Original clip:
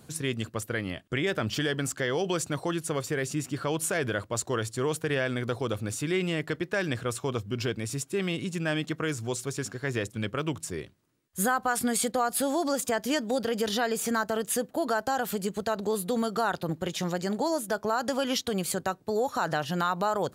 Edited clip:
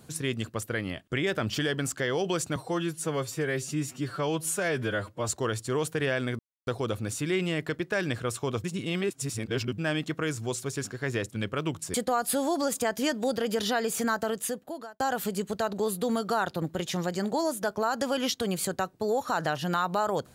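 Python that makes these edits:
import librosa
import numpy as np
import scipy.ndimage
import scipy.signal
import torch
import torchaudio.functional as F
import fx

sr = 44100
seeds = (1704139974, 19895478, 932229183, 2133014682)

y = fx.edit(x, sr, fx.stretch_span(start_s=2.56, length_s=1.82, factor=1.5),
    fx.insert_silence(at_s=5.48, length_s=0.28),
    fx.reverse_span(start_s=7.45, length_s=1.14),
    fx.cut(start_s=10.75, length_s=1.26),
    fx.fade_out_span(start_s=14.31, length_s=0.76), tone=tone)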